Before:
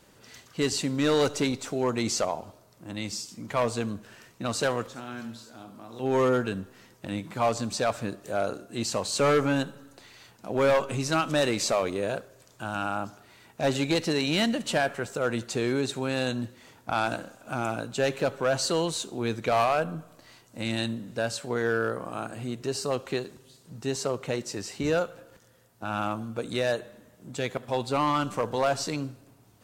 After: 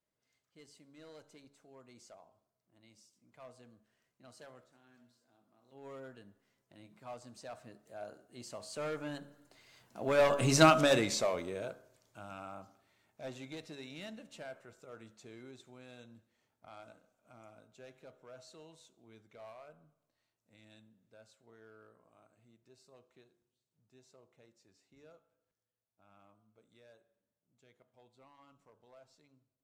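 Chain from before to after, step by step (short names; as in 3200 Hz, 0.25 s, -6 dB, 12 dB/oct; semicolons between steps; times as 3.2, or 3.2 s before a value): Doppler pass-by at 10.6, 16 m/s, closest 2.8 m; de-hum 70.85 Hz, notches 24; small resonant body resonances 640/2100 Hz, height 6 dB; gain +3.5 dB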